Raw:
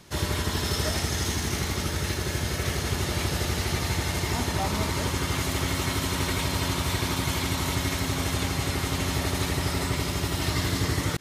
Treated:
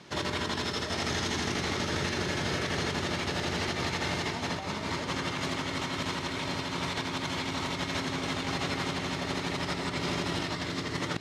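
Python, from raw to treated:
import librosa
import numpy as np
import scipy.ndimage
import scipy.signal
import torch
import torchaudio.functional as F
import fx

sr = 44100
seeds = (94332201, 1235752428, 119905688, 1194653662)

y = fx.bandpass_edges(x, sr, low_hz=150.0, high_hz=4800.0)
y = fx.over_compress(y, sr, threshold_db=-32.0, ratio=-0.5)
y = y + 10.0 ** (-11.0 / 20.0) * np.pad(y, (int(694 * sr / 1000.0), 0))[:len(y)]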